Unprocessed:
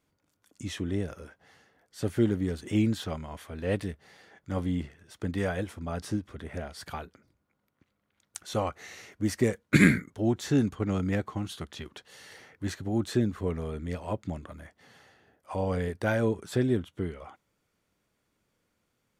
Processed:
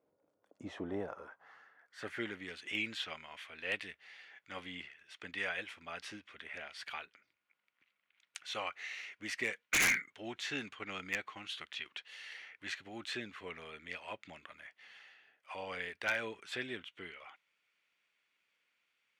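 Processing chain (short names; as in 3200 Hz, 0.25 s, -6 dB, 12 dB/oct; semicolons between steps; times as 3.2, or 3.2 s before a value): band-pass sweep 530 Hz -> 2500 Hz, 0.37–2.48; wavefolder -30 dBFS; gain +7 dB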